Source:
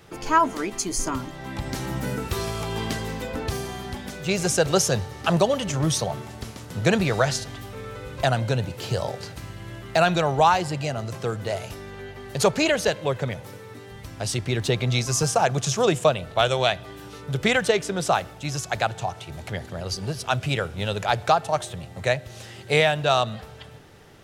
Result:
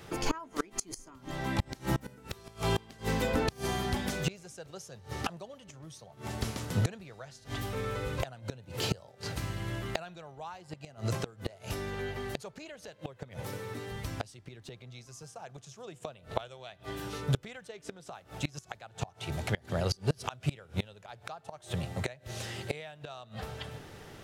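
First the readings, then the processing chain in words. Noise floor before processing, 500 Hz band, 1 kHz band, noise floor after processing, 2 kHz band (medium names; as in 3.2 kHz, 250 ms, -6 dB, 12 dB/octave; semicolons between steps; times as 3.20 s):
-43 dBFS, -14.5 dB, -15.5 dB, -58 dBFS, -13.0 dB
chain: inverted gate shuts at -18 dBFS, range -27 dB; trim +1.5 dB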